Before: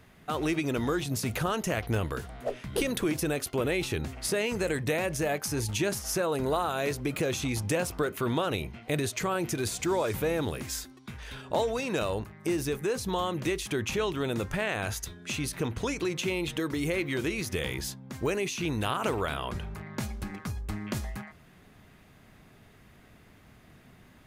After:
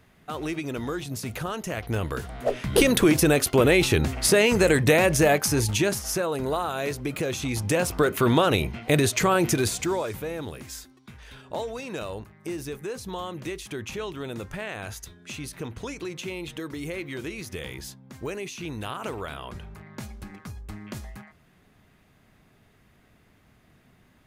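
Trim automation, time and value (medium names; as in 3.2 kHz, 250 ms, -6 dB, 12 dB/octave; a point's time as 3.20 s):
1.69 s -2 dB
2.71 s +10 dB
5.27 s +10 dB
6.33 s +1 dB
7.38 s +1 dB
8.14 s +8.5 dB
9.53 s +8.5 dB
10.21 s -4 dB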